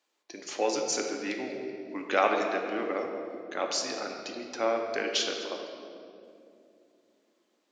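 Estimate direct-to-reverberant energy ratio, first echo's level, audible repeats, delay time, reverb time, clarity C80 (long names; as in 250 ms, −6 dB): 2.0 dB, no echo audible, no echo audible, no echo audible, 2.7 s, 5.0 dB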